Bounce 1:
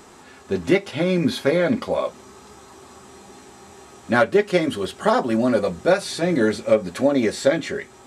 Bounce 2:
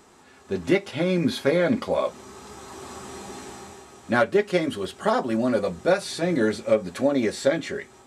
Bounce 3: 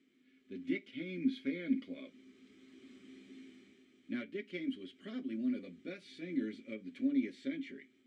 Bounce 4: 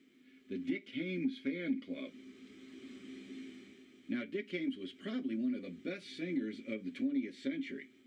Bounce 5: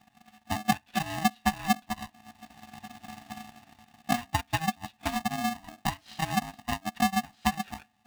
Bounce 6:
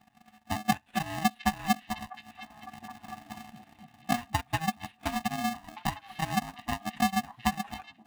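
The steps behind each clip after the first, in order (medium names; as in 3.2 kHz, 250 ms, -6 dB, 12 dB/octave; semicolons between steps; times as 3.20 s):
level rider gain up to 13.5 dB; trim -7.5 dB
vowel filter i; trim -5 dB
compression 2.5:1, threshold -41 dBFS, peak gain reduction 10.5 dB; trim +6 dB
transient shaper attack +11 dB, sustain -10 dB; polarity switched at an audio rate 480 Hz; trim +2 dB
median filter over 9 samples; repeats whose band climbs or falls 710 ms, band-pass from 2.8 kHz, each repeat -1.4 oct, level -11 dB; trim -1 dB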